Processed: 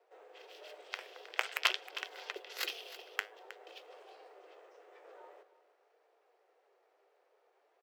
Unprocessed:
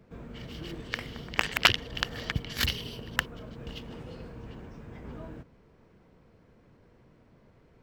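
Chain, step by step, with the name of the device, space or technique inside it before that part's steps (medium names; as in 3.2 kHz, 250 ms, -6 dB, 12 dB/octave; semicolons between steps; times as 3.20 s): alien voice (ring modulator 270 Hz; flange 0.49 Hz, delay 2.6 ms, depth 8.5 ms, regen +79%); steep high-pass 420 Hz 48 dB/octave; delay 315 ms -15.5 dB; trim -1 dB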